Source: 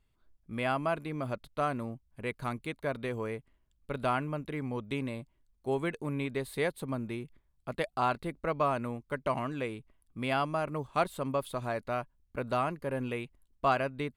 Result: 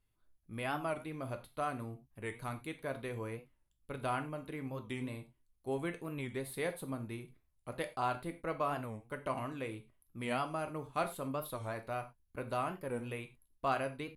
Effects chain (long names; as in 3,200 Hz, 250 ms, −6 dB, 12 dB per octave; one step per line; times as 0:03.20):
parametric band 11,000 Hz +13 dB 0.31 octaves
reverb whose tail is shaped and stops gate 130 ms falling, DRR 6.5 dB
wow of a warped record 45 rpm, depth 160 cents
level −6.5 dB